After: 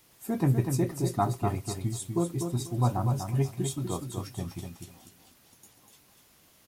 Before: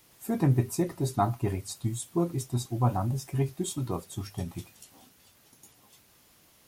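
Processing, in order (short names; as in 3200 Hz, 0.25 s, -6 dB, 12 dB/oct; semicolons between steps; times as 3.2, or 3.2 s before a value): feedback echo 0.245 s, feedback 22%, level -6 dB; gain -1 dB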